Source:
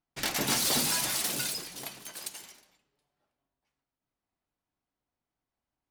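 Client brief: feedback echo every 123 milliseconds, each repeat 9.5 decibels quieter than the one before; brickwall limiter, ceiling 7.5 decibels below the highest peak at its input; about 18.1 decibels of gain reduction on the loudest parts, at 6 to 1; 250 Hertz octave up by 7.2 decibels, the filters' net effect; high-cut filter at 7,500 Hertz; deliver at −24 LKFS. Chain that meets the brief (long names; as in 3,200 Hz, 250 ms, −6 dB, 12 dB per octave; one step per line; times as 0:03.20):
low-pass filter 7,500 Hz
parametric band 250 Hz +8.5 dB
downward compressor 6 to 1, threshold −43 dBFS
brickwall limiter −36 dBFS
repeating echo 123 ms, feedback 33%, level −9.5 dB
level +21.5 dB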